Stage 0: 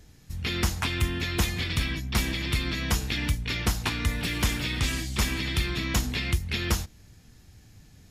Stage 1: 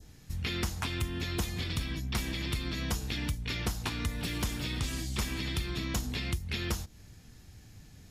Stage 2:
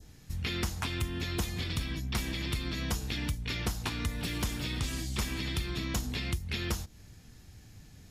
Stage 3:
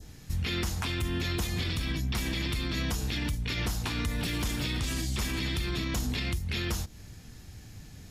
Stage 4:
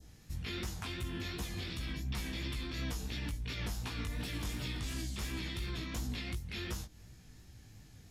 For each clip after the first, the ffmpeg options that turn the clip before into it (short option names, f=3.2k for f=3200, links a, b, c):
-af "adynamicequalizer=threshold=0.00631:dfrequency=2100:dqfactor=1.1:tfrequency=2100:tqfactor=1.1:attack=5:release=100:ratio=0.375:range=3:mode=cutabove:tftype=bell,acompressor=threshold=-32dB:ratio=2.5"
-af anull
-af "alimiter=level_in=4dB:limit=-24dB:level=0:latency=1:release=25,volume=-4dB,volume=5.5dB"
-af "flanger=delay=15:depth=5.2:speed=2.8,volume=-5.5dB"